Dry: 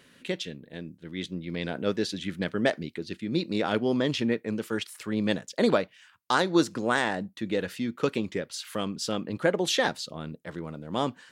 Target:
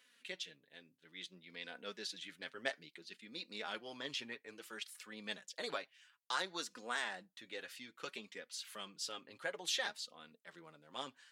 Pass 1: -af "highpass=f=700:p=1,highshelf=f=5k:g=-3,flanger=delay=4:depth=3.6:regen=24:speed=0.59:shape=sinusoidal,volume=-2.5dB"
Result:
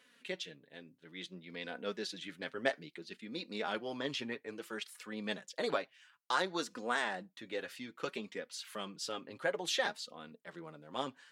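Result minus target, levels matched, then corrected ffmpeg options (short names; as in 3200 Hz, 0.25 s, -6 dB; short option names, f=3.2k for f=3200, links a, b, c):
500 Hz band +4.5 dB
-af "highpass=f=2.5k:p=1,highshelf=f=5k:g=-3,flanger=delay=4:depth=3.6:regen=24:speed=0.59:shape=sinusoidal,volume=-2.5dB"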